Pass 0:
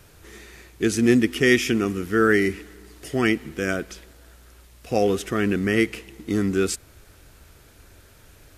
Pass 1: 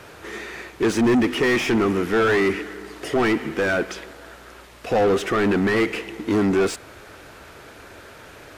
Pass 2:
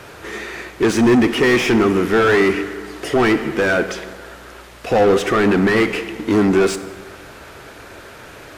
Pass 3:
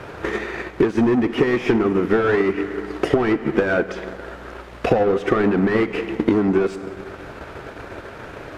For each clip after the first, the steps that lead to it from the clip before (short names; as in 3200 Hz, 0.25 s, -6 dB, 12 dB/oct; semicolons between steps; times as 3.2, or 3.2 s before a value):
overdrive pedal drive 30 dB, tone 1200 Hz, clips at -4 dBFS; gain -5.5 dB
plate-style reverb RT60 1.4 s, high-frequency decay 0.6×, DRR 11.5 dB; gain +4.5 dB
LPF 1500 Hz 6 dB/oct; transient shaper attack +9 dB, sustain -5 dB; compressor 6:1, threshold -19 dBFS, peak gain reduction 13.5 dB; gain +4 dB